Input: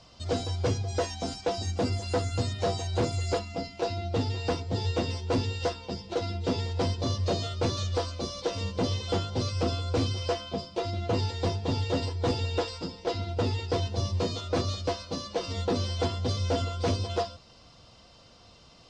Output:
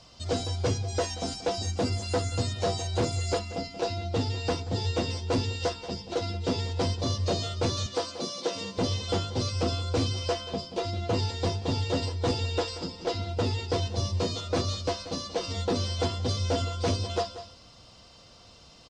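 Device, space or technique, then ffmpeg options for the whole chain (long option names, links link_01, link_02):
ducked delay: -filter_complex "[0:a]asettb=1/sr,asplit=3[link_01][link_02][link_03];[link_01]atrim=end=7.864[link_04];[link_02]atrim=start=7.86:end=8.78,asetpts=PTS-STARTPTS,afade=type=in:duration=0.004:curve=qsin,afade=type=out:start_time=0.916:duration=0.004:curve=qsin,highpass=frequency=150:width=0.5412,highpass=frequency=150:width=1.3066[link_05];[link_03]atrim=start=8.776[link_06];[link_04][link_05]acrossfade=duration=0.004:curve1=hsin:curve2=qsin[link_07];[link_07][link_06]acrossfade=duration=0.004:curve1=qsin:curve2=hsin,asplit=3[link_08][link_09][link_10];[link_09]adelay=182,volume=-8dB[link_11];[link_10]apad=whole_len=841086[link_12];[link_11][link_12]sidechaincompress=threshold=-45dB:ratio=8:attack=16:release=157[link_13];[link_08][link_13]amix=inputs=2:normalize=0,highshelf=frequency=5300:gain=6"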